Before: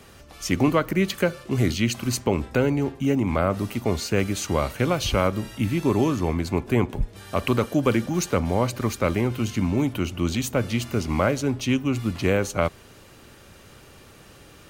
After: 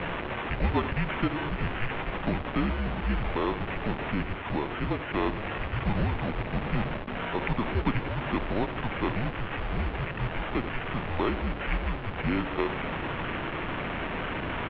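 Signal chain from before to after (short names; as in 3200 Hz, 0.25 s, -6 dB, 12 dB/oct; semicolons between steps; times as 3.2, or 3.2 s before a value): delta modulation 32 kbps, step -19 dBFS; 4.11–5.11 air absorption 200 m; sample-and-hold 9×; on a send: echo 90 ms -15.5 dB; on the sum: mistuned SSB -220 Hz 210–3300 Hz; gain -5 dB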